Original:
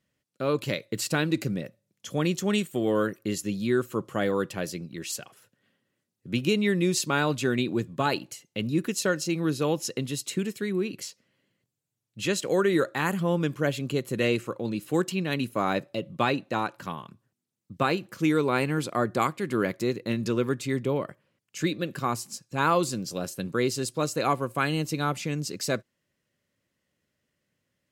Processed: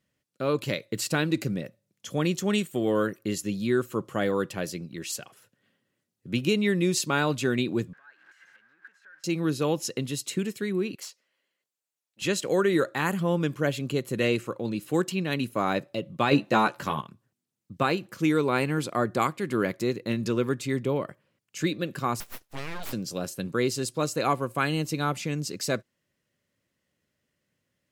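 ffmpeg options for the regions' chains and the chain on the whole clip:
-filter_complex "[0:a]asettb=1/sr,asplit=3[a][b][c];[a]atrim=end=7.934[d];[b]atrim=start=7.93:end=9.24,asetpts=PTS-STARTPTS,afade=t=in:d=0.004:c=qsin,afade=t=out:st=1.306:d=0.004:c=qsin,aeval=exprs='val(0)+0.5*0.0473*sgn(val(0))':c=same,acompressor=threshold=-31dB:ratio=6:attack=3.2:release=140:knee=1:detection=peak,bandpass=f=1.6k:t=q:w=18[e];[c]atrim=start=9.236[f];[d][e]acrossfade=d=0.004:c1=hsin:c2=qsin[g];[g][f]acrossfade=d=0.004:c1=qsin:c2=hsin,asettb=1/sr,asplit=3[h][i][j];[h]atrim=end=10.954[k];[i]atrim=start=10.95:end=12.22,asetpts=PTS-STARTPTS,afade=t=in:d=0.004:c=qsin,afade=t=out:st=1.266:d=0.004:c=qsin,aeval=exprs='(tanh(25.1*val(0)+0.5)-tanh(0.5))/25.1':c=same,highpass=590[l];[j]atrim=start=12.216[m];[k][l]acrossfade=d=0.004:c1=hsin:c2=qsin[n];[n][m]acrossfade=d=0.004:c1=qsin:c2=hsin,asettb=1/sr,asplit=3[o][p][q];[o]atrim=end=16.314[r];[p]atrim=start=16.31:end=17.01,asetpts=PTS-STARTPTS,afade=t=in:d=0.004:c=qsin,afade=t=out:st=0.696:d=0.004:c=qsin,acontrast=29,asplit=2[s][t];[t]adelay=14,volume=-4.5dB[u];[s][u]amix=inputs=2:normalize=0,atrim=end_sample=30870[v];[q]atrim=start=17.006[w];[r][v]acrossfade=d=0.004:c1=hsin:c2=qsin[x];[x][w]acrossfade=d=0.004:c1=qsin:c2=hsin,asettb=1/sr,asplit=3[y][z][aa];[y]atrim=end=22.204[ab];[z]atrim=start=22.2:end=22.93,asetpts=PTS-STARTPTS,afade=t=in:d=0.004:c=qsin,afade=t=out:st=0.726:d=0.004:c=qsin,highpass=250,acompressor=threshold=-28dB:ratio=12:attack=3.2:release=140:knee=1:detection=peak,aeval=exprs='abs(val(0))':c=same[ac];[aa]atrim=start=22.926[ad];[ab][ac]acrossfade=d=0.004:c1=hsin:c2=qsin[ae];[ae][ad]acrossfade=d=0.004:c1=qsin:c2=hsin"

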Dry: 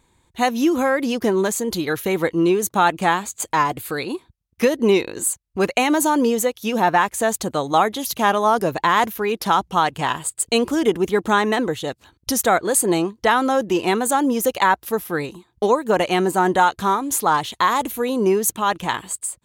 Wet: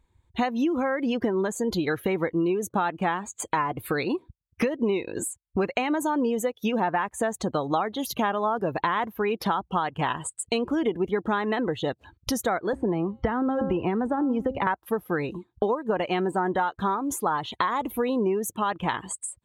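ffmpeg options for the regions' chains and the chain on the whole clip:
-filter_complex "[0:a]asettb=1/sr,asplit=3[a][b][c];[a]atrim=end=12.734[d];[b]atrim=start=12.73:end=14.67,asetpts=PTS-STARTPTS,afade=t=in:d=0.004:c=qsin,afade=t=out:st=1.936:d=0.004:c=qsin,aemphasis=mode=reproduction:type=bsi,bandreject=f=267.8:t=h:w=4,bandreject=f=535.6:t=h:w=4,bandreject=f=803.4:t=h:w=4,bandreject=f=1.0712k:t=h:w=4,bandreject=f=1.339k:t=h:w=4,bandreject=f=1.6068k:t=h:w=4,bandreject=f=1.8746k:t=h:w=4,bandreject=f=2.1424k:t=h:w=4,bandreject=f=2.4102k:t=h:w=4,bandreject=f=2.678k:t=h:w=4,bandreject=f=2.9458k:t=h:w=4,bandreject=f=3.2136k:t=h:w=4,bandreject=f=3.4814k:t=h:w=4,bandreject=f=3.7492k:t=h:w=4,bandreject=f=4.017k:t=h:w=4,bandreject=f=4.2848k:t=h:w=4,bandreject=f=4.5526k:t=h:w=4,bandreject=f=4.8204k:t=h:w=4,bandreject=f=5.0882k:t=h:w=4,bandreject=f=5.356k:t=h:w=4,bandreject=f=5.6238k:t=h:w=4,bandreject=f=5.8916k:t=h:w=4,bandreject=f=6.1594k:t=h:w=4,bandreject=f=6.4272k:t=h:w=4,bandreject=f=6.695k:t=h:w=4,bandreject=f=6.9628k:t=h:w=4,bandreject=f=7.2306k:t=h:w=4,bandreject=f=7.4984k:t=h:w=4,bandreject=f=7.7662k:t=h:w=4,acrossover=split=250|500|2500[e][f][g][h];[e]acompressor=threshold=-26dB:ratio=3[i];[f]acompressor=threshold=-29dB:ratio=3[j];[g]acompressor=threshold=-28dB:ratio=3[k];[h]acompressor=threshold=-46dB:ratio=3[l];[i][j][k][l]amix=inputs=4:normalize=0[m];[c]atrim=start=14.666[n];[d][m]acrossfade=d=0.004:c1=hsin:c2=qsin[o];[o][n]acrossfade=d=0.004:c1=qsin:c2=hsin,acompressor=threshold=-28dB:ratio=6,bass=f=250:g=1,treble=f=4k:g=-7,afftdn=nr=17:nf=-46,volume=5dB"

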